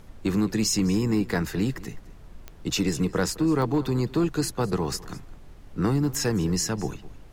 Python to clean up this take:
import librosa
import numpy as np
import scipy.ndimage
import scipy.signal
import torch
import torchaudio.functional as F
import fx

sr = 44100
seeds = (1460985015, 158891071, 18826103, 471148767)

y = fx.fix_declip(x, sr, threshold_db=-15.5)
y = fx.fix_declick_ar(y, sr, threshold=10.0)
y = fx.noise_reduce(y, sr, print_start_s=2.12, print_end_s=2.62, reduce_db=27.0)
y = fx.fix_echo_inverse(y, sr, delay_ms=209, level_db=-19.5)